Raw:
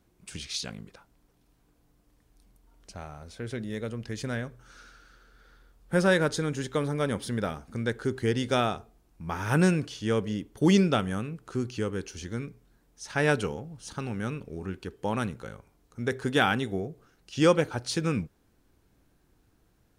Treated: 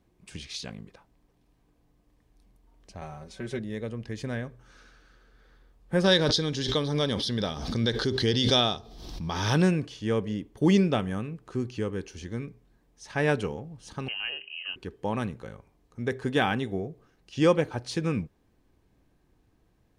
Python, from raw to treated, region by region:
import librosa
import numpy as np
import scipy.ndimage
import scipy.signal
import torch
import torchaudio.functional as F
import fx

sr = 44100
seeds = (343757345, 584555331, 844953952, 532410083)

y = fx.chain(x, sr, fx.comb(ms=5.3, depth=0.85),
    fx.dynamic_eq(hz=7100.0, q=0.92, threshold_db=-59.0, ratio=4.0, max_db=5), at=(3.01, 3.59))
y = fx.chain(y, sr, fx.band_shelf(hz=4300.0, db=15.5, octaves=1.1),
    fx.pre_swell(db_per_s=44.0), at=(6.04, 9.62))
y = fx.chain(y, sr, fx.freq_invert(carrier_hz=3000),
    fx.hum_notches(base_hz=50, count=8), at=(14.08, 14.76))
y = fx.high_shelf(y, sr, hz=5300.0, db=-9.5)
y = fx.notch(y, sr, hz=1400.0, q=7.2)